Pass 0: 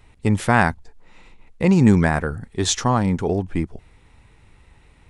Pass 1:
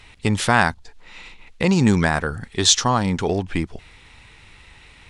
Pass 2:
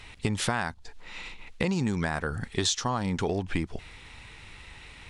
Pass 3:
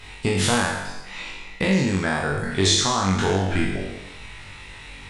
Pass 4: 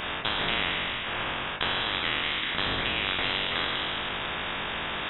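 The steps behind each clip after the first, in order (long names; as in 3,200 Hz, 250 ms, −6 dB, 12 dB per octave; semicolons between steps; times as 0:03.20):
parametric band 3,500 Hz +13.5 dB 2.9 octaves; in parallel at 0 dB: downward compressor, threshold −22 dBFS, peak gain reduction 16.5 dB; on the sum: dynamic equaliser 2,200 Hz, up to −7 dB, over −27 dBFS, Q 1.5; level −5 dB
downward compressor 10 to 1, threshold −24 dBFS, peak gain reduction 14 dB
peak hold with a decay on every bin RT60 1.08 s; on a send: flutter between parallel walls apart 3.6 metres, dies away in 0.34 s; on the sum: level +2 dB
high-pass filter 150 Hz 12 dB per octave; voice inversion scrambler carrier 3,600 Hz; every bin compressed towards the loudest bin 4 to 1; level −4.5 dB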